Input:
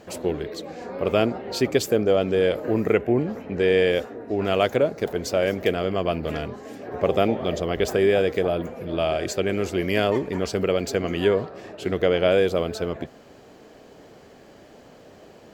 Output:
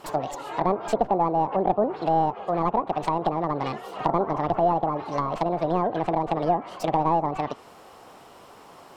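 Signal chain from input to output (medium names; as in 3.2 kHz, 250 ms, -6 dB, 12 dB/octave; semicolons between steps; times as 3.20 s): tracing distortion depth 0.23 ms; low-pass that closes with the level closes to 490 Hz, closed at -19 dBFS; speed mistake 45 rpm record played at 78 rpm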